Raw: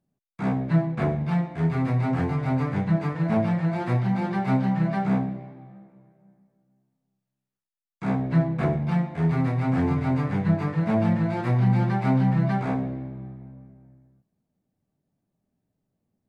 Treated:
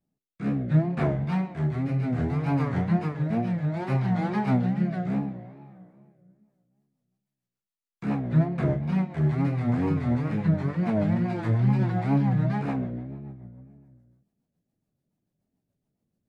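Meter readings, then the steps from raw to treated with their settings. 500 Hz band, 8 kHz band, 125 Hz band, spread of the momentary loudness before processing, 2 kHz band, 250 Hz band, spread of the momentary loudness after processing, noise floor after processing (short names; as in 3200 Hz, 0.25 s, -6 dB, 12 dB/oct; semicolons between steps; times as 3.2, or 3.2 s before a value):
-2.5 dB, n/a, -1.5 dB, 7 LU, -3.5 dB, -1.5 dB, 8 LU, under -85 dBFS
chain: wow and flutter 140 cents; rotary speaker horn 0.65 Hz, later 7 Hz, at 6.16; de-hum 97.43 Hz, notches 34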